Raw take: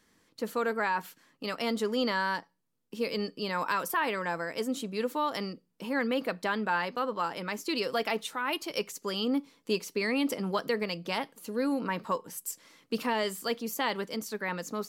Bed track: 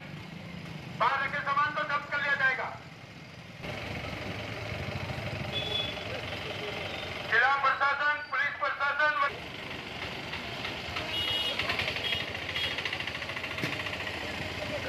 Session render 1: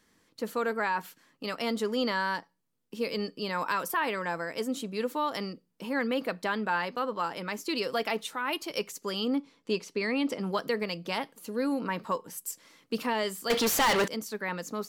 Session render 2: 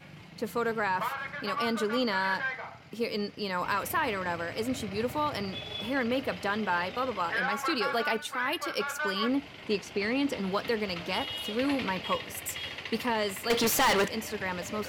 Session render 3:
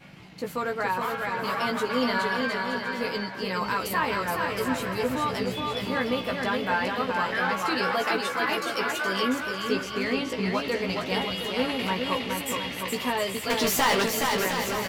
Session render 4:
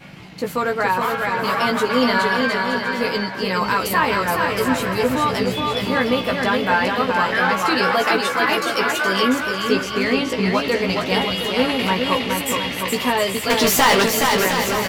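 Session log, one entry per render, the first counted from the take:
9.35–10.41 air absorption 54 m; 13.5–14.08 overdrive pedal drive 32 dB, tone 6800 Hz, clips at -17.5 dBFS
add bed track -6.5 dB
doubler 16 ms -4 dB; bouncing-ball echo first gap 0.42 s, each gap 0.7×, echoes 5
gain +8 dB

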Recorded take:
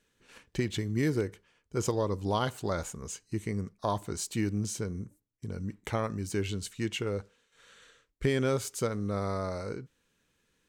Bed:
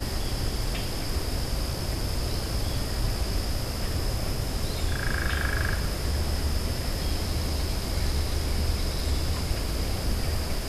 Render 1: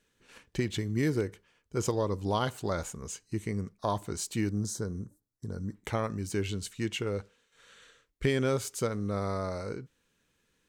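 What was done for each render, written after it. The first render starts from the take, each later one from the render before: 4.5–5.75 Butterworth band-stop 2600 Hz, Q 1.3; 7.14–8.31 dynamic EQ 2800 Hz, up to +4 dB, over -58 dBFS, Q 1.1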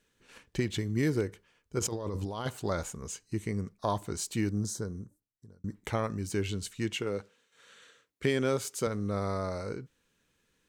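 1.79–2.46 negative-ratio compressor -35 dBFS; 4.68–5.64 fade out linear; 6.93–8.87 HPF 140 Hz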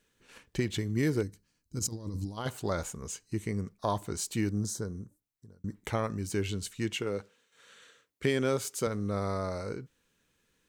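1.23–2.38 spectral gain 330–3800 Hz -13 dB; high shelf 12000 Hz +4 dB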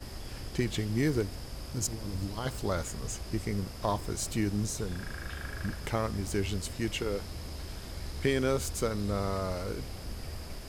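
add bed -12.5 dB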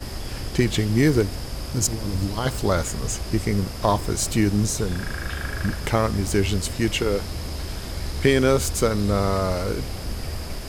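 gain +10 dB

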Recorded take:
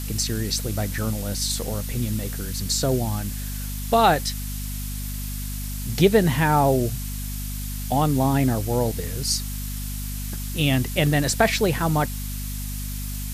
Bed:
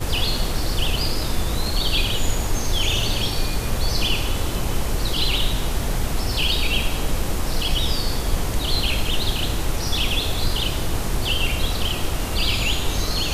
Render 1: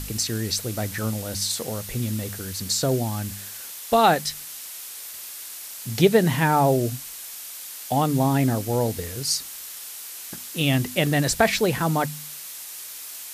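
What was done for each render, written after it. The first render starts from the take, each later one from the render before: de-hum 50 Hz, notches 5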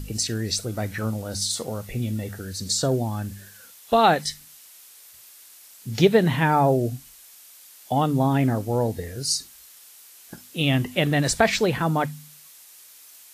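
noise print and reduce 11 dB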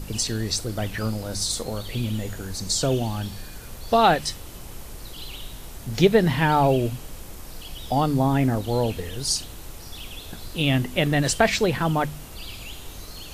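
add bed -16.5 dB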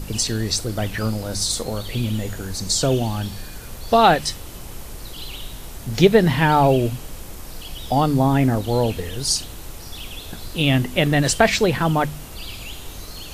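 gain +3.5 dB

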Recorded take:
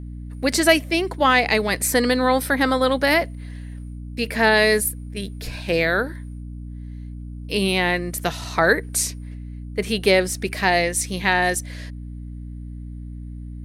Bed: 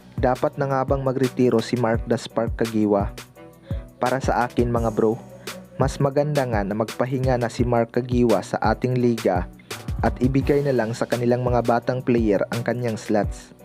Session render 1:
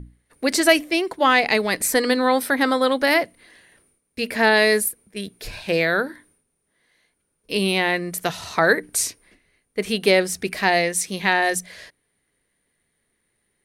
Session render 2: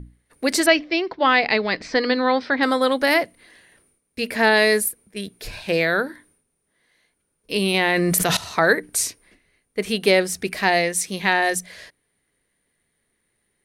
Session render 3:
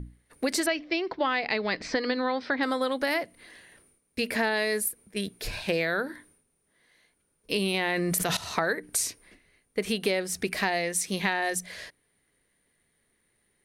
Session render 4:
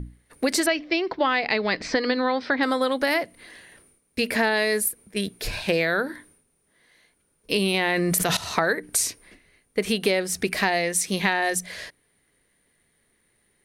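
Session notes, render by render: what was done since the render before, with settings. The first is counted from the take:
notches 60/120/180/240/300 Hz
0.66–2.63 elliptic low-pass 5100 Hz, stop band 70 dB; 7.74–8.37 fast leveller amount 100%
compressor 6:1, threshold -24 dBFS, peak gain reduction 13 dB
gain +4.5 dB

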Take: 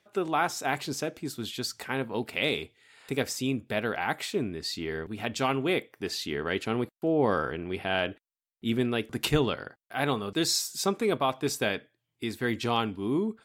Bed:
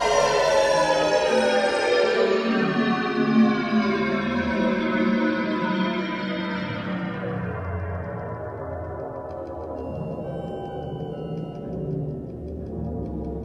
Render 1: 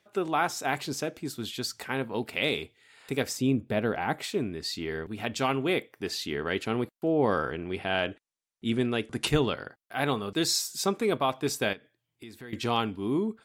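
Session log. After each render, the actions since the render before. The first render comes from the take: 3.37–4.24 tilt shelf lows +5 dB, about 900 Hz; 7.5–9.27 careless resampling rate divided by 2×, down none, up filtered; 11.73–12.53 compressor 2.5:1, threshold -47 dBFS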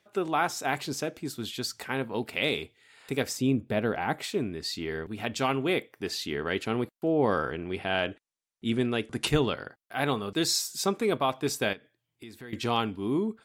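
nothing audible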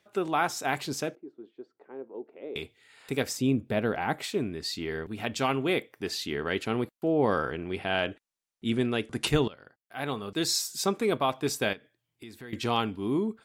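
1.15–2.56 ladder band-pass 430 Hz, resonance 50%; 9.48–10.64 fade in, from -19 dB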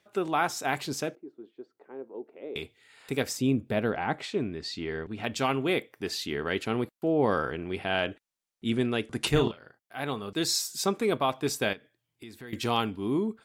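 3.9–5.24 air absorption 77 m; 9.33–9.96 doubler 35 ms -5 dB; 12.47–12.9 high shelf 10000 Hz +9.5 dB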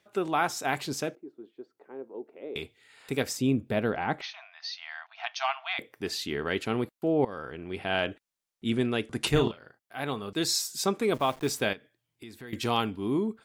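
4.21–5.79 brick-wall FIR band-pass 640–6500 Hz; 7.25–7.94 fade in, from -17.5 dB; 11.14–11.61 level-crossing sampler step -44 dBFS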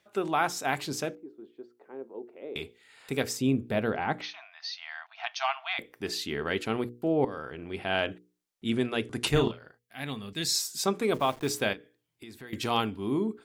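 notches 60/120/180/240/300/360/420/480 Hz; 9.77–10.55 spectral gain 290–1600 Hz -8 dB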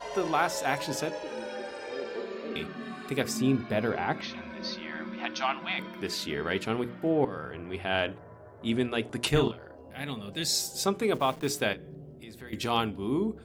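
add bed -17.5 dB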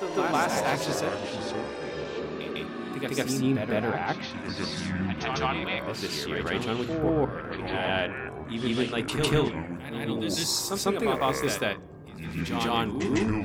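echoes that change speed 95 ms, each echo -6 st, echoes 2, each echo -6 dB; reverse echo 0.151 s -4.5 dB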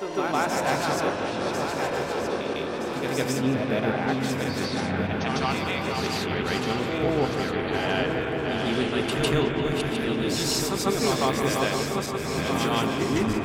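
regenerating reverse delay 0.635 s, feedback 68%, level -5 dB; on a send: analogue delay 0.174 s, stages 4096, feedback 84%, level -10 dB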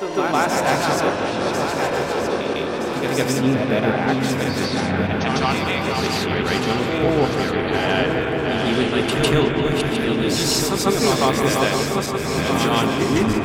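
gain +6 dB

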